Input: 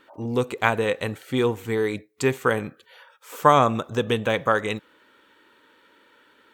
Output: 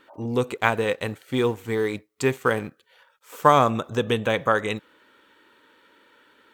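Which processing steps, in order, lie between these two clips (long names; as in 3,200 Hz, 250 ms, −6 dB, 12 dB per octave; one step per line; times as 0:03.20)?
0:00.55–0:03.70: mu-law and A-law mismatch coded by A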